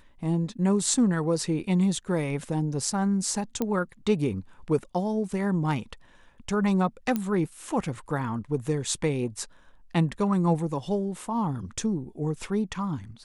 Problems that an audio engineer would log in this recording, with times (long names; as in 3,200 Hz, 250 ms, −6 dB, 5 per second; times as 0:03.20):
0:03.62: click −14 dBFS
0:07.16: click −14 dBFS